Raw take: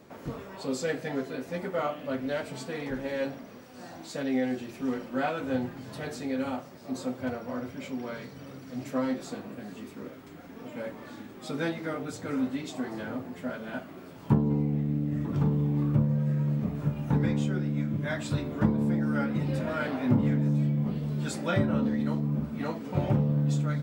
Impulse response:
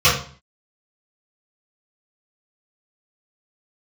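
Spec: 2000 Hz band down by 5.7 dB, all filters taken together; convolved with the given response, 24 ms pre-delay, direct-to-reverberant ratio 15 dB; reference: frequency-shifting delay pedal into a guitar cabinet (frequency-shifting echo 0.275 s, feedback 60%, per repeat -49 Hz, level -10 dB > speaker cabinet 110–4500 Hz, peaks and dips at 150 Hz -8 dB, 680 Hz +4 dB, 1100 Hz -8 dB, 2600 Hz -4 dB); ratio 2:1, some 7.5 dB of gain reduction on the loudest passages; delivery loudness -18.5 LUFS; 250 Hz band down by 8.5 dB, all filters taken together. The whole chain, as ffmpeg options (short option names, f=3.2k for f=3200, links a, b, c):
-filter_complex "[0:a]equalizer=f=250:t=o:g=-8.5,equalizer=f=2k:t=o:g=-6,acompressor=threshold=-35dB:ratio=2,asplit=2[a][b];[1:a]atrim=start_sample=2205,adelay=24[c];[b][c]afir=irnorm=-1:irlink=0,volume=-38.5dB[d];[a][d]amix=inputs=2:normalize=0,asplit=8[e][f][g][h][i][j][k][l];[f]adelay=275,afreqshift=-49,volume=-10dB[m];[g]adelay=550,afreqshift=-98,volume=-14.4dB[n];[h]adelay=825,afreqshift=-147,volume=-18.9dB[o];[i]adelay=1100,afreqshift=-196,volume=-23.3dB[p];[j]adelay=1375,afreqshift=-245,volume=-27.7dB[q];[k]adelay=1650,afreqshift=-294,volume=-32.2dB[r];[l]adelay=1925,afreqshift=-343,volume=-36.6dB[s];[e][m][n][o][p][q][r][s]amix=inputs=8:normalize=0,highpass=110,equalizer=f=150:t=q:w=4:g=-8,equalizer=f=680:t=q:w=4:g=4,equalizer=f=1.1k:t=q:w=4:g=-8,equalizer=f=2.6k:t=q:w=4:g=-4,lowpass=f=4.5k:w=0.5412,lowpass=f=4.5k:w=1.3066,volume=21.5dB"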